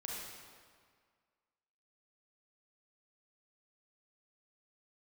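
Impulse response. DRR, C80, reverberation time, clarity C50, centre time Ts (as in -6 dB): -4.0 dB, 0.5 dB, 1.9 s, -2.0 dB, 0.11 s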